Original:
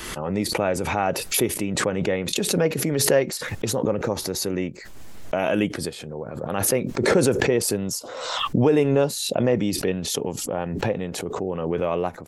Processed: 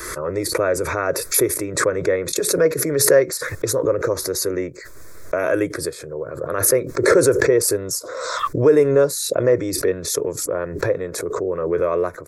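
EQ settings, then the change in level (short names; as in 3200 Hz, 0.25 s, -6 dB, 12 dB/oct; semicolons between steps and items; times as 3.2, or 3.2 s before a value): low shelf 80 Hz -7 dB; fixed phaser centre 800 Hz, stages 6; +6.5 dB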